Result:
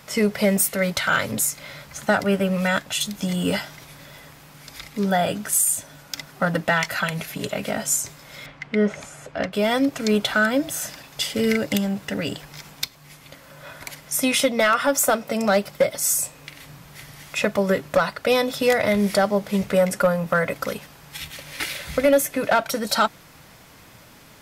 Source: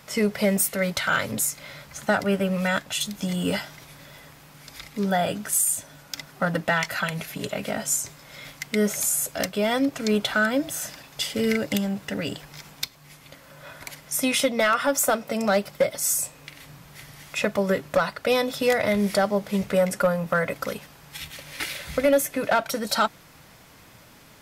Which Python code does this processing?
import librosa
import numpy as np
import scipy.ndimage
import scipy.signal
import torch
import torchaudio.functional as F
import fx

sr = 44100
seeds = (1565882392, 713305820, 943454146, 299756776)

y = fx.lowpass(x, sr, hz=2400.0, slope=12, at=(8.46, 9.53))
y = F.gain(torch.from_numpy(y), 2.5).numpy()